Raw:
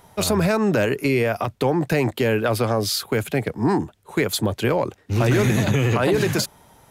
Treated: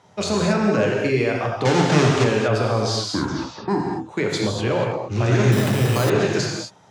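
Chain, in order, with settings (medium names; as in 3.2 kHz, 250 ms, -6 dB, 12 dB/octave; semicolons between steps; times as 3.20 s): 1.65–2.24 s: square wave that keeps the level; 2.97 s: tape stop 0.71 s; Chebyshev band-pass 100–6700 Hz, order 3; gated-style reverb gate 260 ms flat, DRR -1 dB; 5.52–6.10 s: careless resampling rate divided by 8×, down none, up hold; trim -3 dB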